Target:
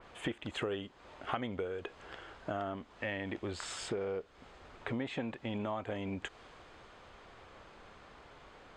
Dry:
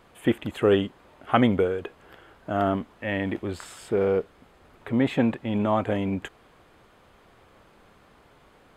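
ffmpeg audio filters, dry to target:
-af "lowpass=f=7300:w=0.5412,lowpass=f=7300:w=1.3066,equalizer=f=180:t=o:w=2.2:g=-5.5,acompressor=threshold=0.0141:ratio=6,adynamicequalizer=threshold=0.00178:dfrequency=3200:dqfactor=0.7:tfrequency=3200:tqfactor=0.7:attack=5:release=100:ratio=0.375:range=2:mode=boostabove:tftype=highshelf,volume=1.26"

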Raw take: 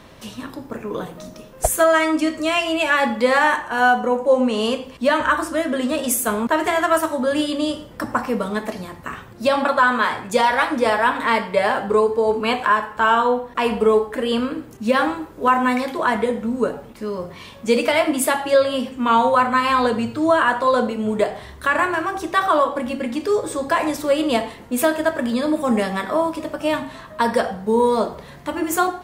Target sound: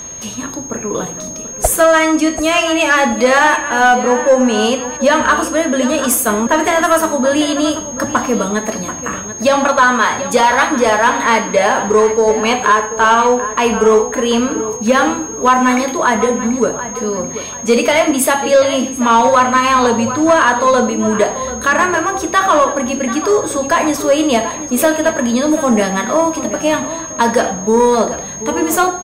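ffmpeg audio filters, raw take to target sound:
-filter_complex "[0:a]aeval=exprs='val(0)+0.02*sin(2*PI*6500*n/s)':c=same,asplit=2[s0][s1];[s1]adelay=736,lowpass=f=4100:p=1,volume=0.224,asplit=2[s2][s3];[s3]adelay=736,lowpass=f=4100:p=1,volume=0.36,asplit=2[s4][s5];[s5]adelay=736,lowpass=f=4100:p=1,volume=0.36,asplit=2[s6][s7];[s7]adelay=736,lowpass=f=4100:p=1,volume=0.36[s8];[s0][s2][s4][s6][s8]amix=inputs=5:normalize=0,acontrast=79"

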